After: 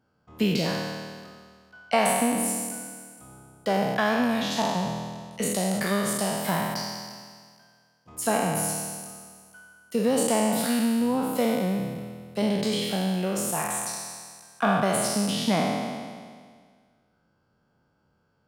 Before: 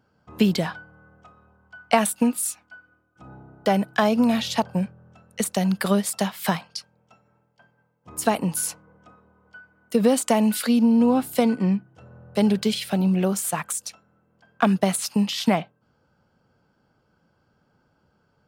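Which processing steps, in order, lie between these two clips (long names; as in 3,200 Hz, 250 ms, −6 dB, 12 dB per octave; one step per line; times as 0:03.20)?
peak hold with a decay on every bin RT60 1.82 s
level −7 dB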